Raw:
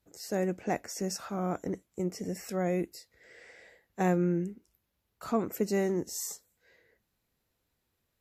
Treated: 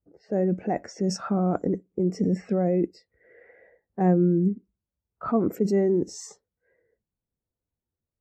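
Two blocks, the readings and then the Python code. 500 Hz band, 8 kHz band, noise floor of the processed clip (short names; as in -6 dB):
+6.5 dB, n/a, under -85 dBFS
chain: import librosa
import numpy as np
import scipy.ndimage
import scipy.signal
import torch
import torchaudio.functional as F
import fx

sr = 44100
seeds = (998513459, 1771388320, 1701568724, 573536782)

p1 = fx.env_lowpass(x, sr, base_hz=1500.0, full_db=-28.0)
p2 = fx.high_shelf(p1, sr, hz=2900.0, db=-6.0)
p3 = fx.over_compress(p2, sr, threshold_db=-36.0, ratio=-0.5)
p4 = p2 + (p3 * librosa.db_to_amplitude(1.5))
p5 = fx.echo_wet_lowpass(p4, sr, ms=60, feedback_pct=35, hz=1100.0, wet_db=-22.5)
p6 = fx.spectral_expand(p5, sr, expansion=1.5)
y = p6 * librosa.db_to_amplitude(1.0)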